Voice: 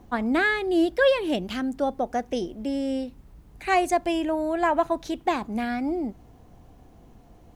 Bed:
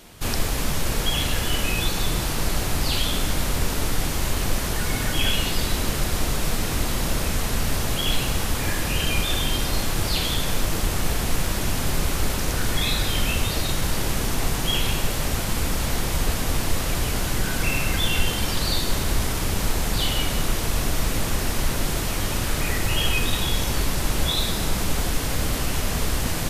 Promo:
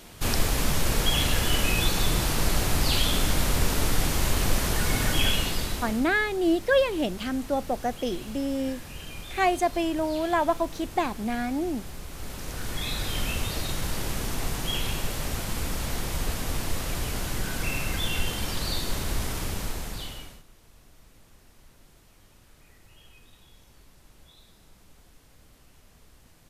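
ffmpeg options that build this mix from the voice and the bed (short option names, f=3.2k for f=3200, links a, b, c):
-filter_complex "[0:a]adelay=5700,volume=-1.5dB[a];[1:a]volume=10.5dB,afade=t=out:st=5.12:d=0.98:silence=0.149624,afade=t=in:st=12.09:d=1.09:silence=0.281838,afade=t=out:st=19.39:d=1.04:silence=0.0501187[b];[a][b]amix=inputs=2:normalize=0"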